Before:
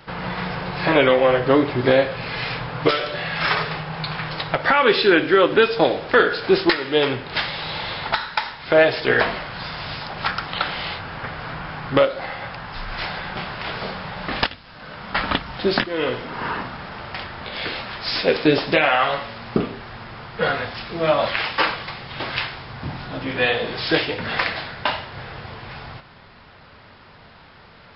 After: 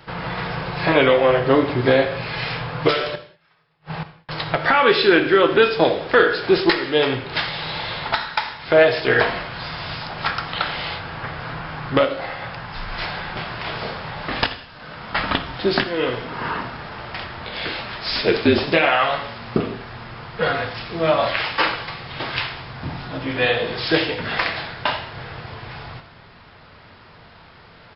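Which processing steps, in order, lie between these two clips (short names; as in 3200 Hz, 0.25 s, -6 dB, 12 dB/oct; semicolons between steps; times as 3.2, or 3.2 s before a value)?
3.15–4.29 flipped gate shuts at -19 dBFS, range -41 dB; non-linear reverb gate 0.23 s falling, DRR 9 dB; 18.08–18.64 frequency shift -48 Hz; on a send: echo 86 ms -21.5 dB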